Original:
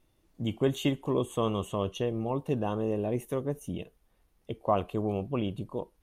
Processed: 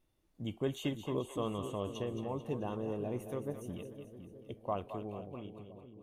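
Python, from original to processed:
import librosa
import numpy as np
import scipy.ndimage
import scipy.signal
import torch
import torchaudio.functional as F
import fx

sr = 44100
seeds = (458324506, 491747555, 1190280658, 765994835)

y = fx.fade_out_tail(x, sr, length_s=1.59)
y = fx.echo_split(y, sr, split_hz=510.0, low_ms=506, high_ms=219, feedback_pct=52, wet_db=-9)
y = F.gain(torch.from_numpy(y), -8.0).numpy()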